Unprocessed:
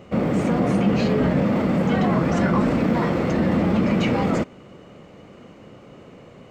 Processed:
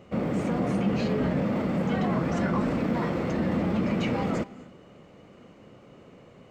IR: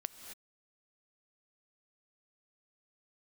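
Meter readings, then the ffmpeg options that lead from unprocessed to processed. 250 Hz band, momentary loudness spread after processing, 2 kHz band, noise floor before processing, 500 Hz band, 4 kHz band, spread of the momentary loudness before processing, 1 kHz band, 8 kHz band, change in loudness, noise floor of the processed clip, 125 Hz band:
-6.5 dB, 2 LU, -6.5 dB, -46 dBFS, -6.5 dB, -6.5 dB, 2 LU, -6.5 dB, n/a, -6.5 dB, -52 dBFS, -6.5 dB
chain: -filter_complex "[0:a]asplit=2[a][b];[1:a]atrim=start_sample=2205[c];[b][c]afir=irnorm=-1:irlink=0,volume=-7dB[d];[a][d]amix=inputs=2:normalize=0,volume=-9dB"

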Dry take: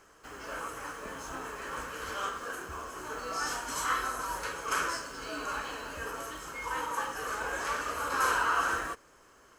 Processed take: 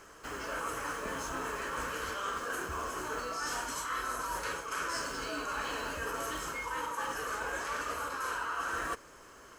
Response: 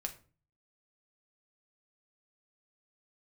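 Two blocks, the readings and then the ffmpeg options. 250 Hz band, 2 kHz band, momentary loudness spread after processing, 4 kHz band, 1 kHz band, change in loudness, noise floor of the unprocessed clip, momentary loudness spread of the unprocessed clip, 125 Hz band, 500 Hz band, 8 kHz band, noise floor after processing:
+0.5 dB, -2.5 dB, 2 LU, -1.0 dB, -2.5 dB, -2.0 dB, -60 dBFS, 12 LU, +0.5 dB, 0.0 dB, -1.5 dB, -54 dBFS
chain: -af "bandreject=f=780:w=23,areverse,acompressor=threshold=-38dB:ratio=12,areverse,volume=5.5dB"

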